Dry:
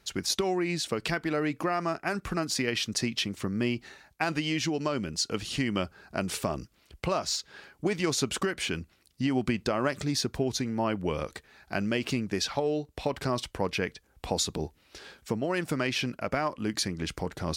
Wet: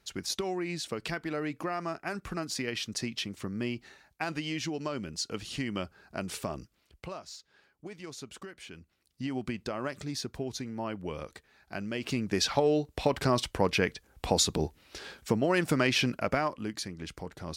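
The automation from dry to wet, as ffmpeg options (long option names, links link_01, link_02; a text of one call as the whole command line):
ffmpeg -i in.wav -af "volume=13.5dB,afade=type=out:start_time=6.57:duration=0.69:silence=0.298538,afade=type=in:start_time=8.75:duration=0.47:silence=0.375837,afade=type=in:start_time=11.92:duration=0.6:silence=0.316228,afade=type=out:start_time=16.15:duration=0.61:silence=0.298538" out.wav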